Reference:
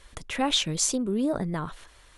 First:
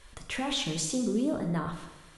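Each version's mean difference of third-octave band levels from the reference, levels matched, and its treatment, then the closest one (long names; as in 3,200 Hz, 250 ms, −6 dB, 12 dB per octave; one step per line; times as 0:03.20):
6.0 dB: brickwall limiter −21 dBFS, peak gain reduction 11 dB
dense smooth reverb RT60 1.1 s, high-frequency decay 0.95×, DRR 3.5 dB
level −2 dB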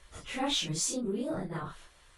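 3.5 dB: random phases in long frames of 100 ms
in parallel at −10.5 dB: soft clipping −27 dBFS, distortion −10 dB
on the sum: level −7 dB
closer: second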